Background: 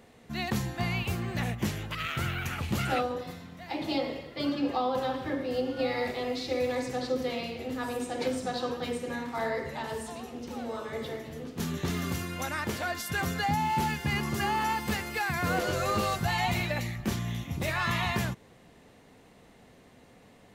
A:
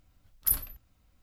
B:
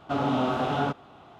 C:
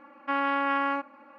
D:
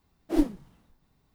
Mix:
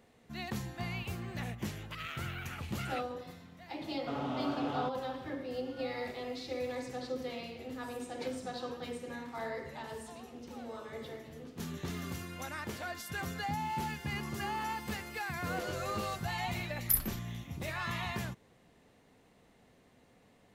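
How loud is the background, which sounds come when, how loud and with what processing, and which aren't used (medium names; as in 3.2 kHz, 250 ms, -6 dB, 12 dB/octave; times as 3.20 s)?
background -8 dB
3.97 s: add B -11 dB
16.43 s: add A -2.5 dB
not used: C, D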